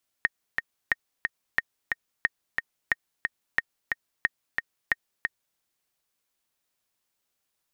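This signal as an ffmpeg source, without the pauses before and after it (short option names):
-f lavfi -i "aevalsrc='pow(10,(-8.5-4*gte(mod(t,2*60/180),60/180))/20)*sin(2*PI*1850*mod(t,60/180))*exp(-6.91*mod(t,60/180)/0.03)':d=5.33:s=44100"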